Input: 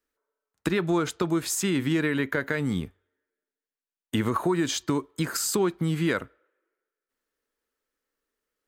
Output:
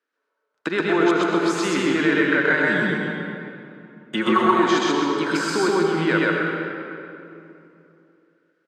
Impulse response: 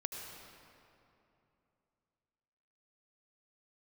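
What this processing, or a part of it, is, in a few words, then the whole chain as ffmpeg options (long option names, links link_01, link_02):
station announcement: -filter_complex "[0:a]asettb=1/sr,asplit=3[link_01][link_02][link_03];[link_01]atrim=end=2.454[link_04];[link_02]atrim=start=2.45:end=4.45,asetpts=PTS-STARTPTS,afade=type=in:duration=0.004:curve=qsin,afade=type=out:start_time=1.996:duration=0.004:curve=qsin,aecho=1:1:5.5:0.96,atrim=end_sample=88200[link_05];[link_03]atrim=start=4.446[link_06];[link_04][link_05]acrossfade=duration=0.004:curve1=hsin:curve2=qsin[link_07];[link_07][link_06]acrossfade=duration=0.004:curve1=qsin:curve2=hsin,highpass=320,lowpass=4000,equalizer=frequency=1500:width_type=o:width=0.21:gain=6.5,aecho=1:1:128.3|262.4:1|0.251[link_08];[1:a]atrim=start_sample=2205[link_09];[link_08][link_09]afir=irnorm=-1:irlink=0,volume=5.5dB"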